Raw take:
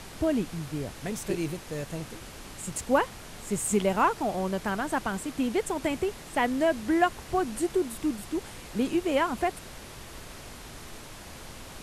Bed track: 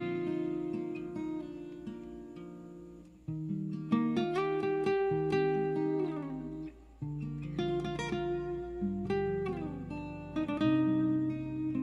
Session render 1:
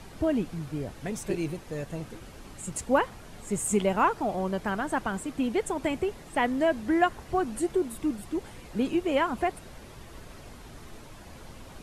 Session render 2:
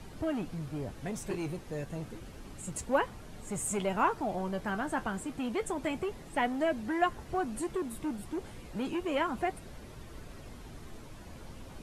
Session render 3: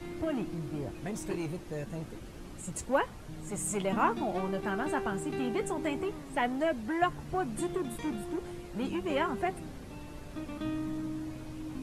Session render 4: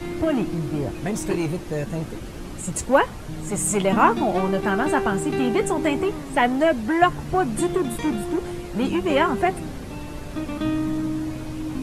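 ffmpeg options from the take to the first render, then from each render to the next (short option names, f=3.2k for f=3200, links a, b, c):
-af "afftdn=nr=8:nf=-45"
-filter_complex "[0:a]acrossover=split=480[a][b];[a]asoftclip=type=tanh:threshold=-33dB[c];[b]flanger=delay=6.5:depth=6.8:regen=50:speed=0.3:shape=sinusoidal[d];[c][d]amix=inputs=2:normalize=0"
-filter_complex "[1:a]volume=-7dB[a];[0:a][a]amix=inputs=2:normalize=0"
-af "volume=11dB"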